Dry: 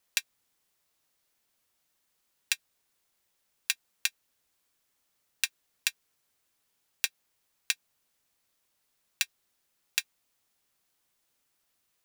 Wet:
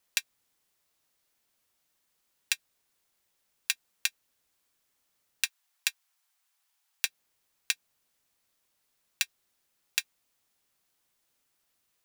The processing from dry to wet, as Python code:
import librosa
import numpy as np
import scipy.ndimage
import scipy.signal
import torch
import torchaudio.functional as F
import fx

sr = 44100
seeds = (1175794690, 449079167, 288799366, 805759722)

y = fx.steep_highpass(x, sr, hz=690.0, slope=48, at=(5.45, 7.05))